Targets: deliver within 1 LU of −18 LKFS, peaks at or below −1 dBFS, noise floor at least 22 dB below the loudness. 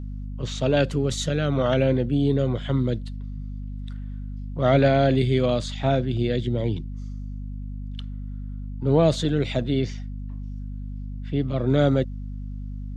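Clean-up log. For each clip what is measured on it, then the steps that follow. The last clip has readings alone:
mains hum 50 Hz; hum harmonics up to 250 Hz; level of the hum −30 dBFS; integrated loudness −23.0 LKFS; sample peak −8.5 dBFS; target loudness −18.0 LKFS
→ mains-hum notches 50/100/150/200/250 Hz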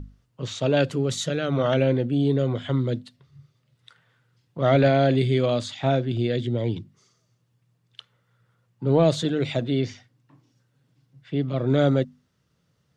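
mains hum none found; integrated loudness −23.5 LKFS; sample peak −9.0 dBFS; target loudness −18.0 LKFS
→ level +5.5 dB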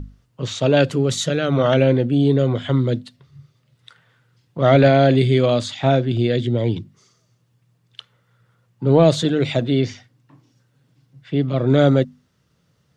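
integrated loudness −18.0 LKFS; sample peak −3.5 dBFS; background noise floor −64 dBFS

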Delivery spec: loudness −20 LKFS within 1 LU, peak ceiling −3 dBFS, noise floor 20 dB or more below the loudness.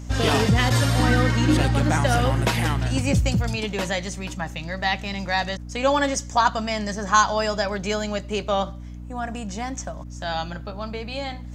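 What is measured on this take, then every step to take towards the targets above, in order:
mains hum 60 Hz; hum harmonics up to 300 Hz; level of the hum −33 dBFS; integrated loudness −23.0 LKFS; sample peak −3.0 dBFS; target loudness −20.0 LKFS
→ hum removal 60 Hz, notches 5
level +3 dB
brickwall limiter −3 dBFS

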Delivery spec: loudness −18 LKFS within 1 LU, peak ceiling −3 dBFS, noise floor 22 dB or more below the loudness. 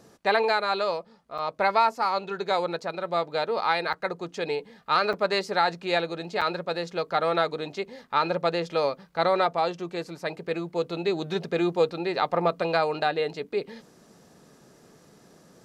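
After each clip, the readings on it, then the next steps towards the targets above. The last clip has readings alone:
number of dropouts 4; longest dropout 6.5 ms; integrated loudness −27.0 LKFS; sample peak −10.0 dBFS; target loudness −18.0 LKFS
→ repair the gap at 0:01.38/0:03.93/0:05.13/0:06.41, 6.5 ms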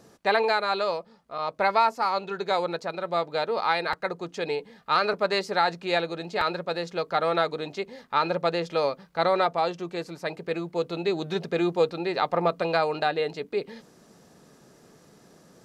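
number of dropouts 0; integrated loudness −27.0 LKFS; sample peak −10.0 dBFS; target loudness −18.0 LKFS
→ level +9 dB
brickwall limiter −3 dBFS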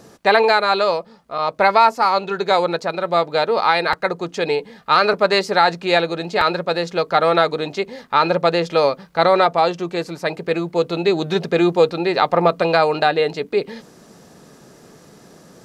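integrated loudness −18.0 LKFS; sample peak −3.0 dBFS; background noise floor −47 dBFS

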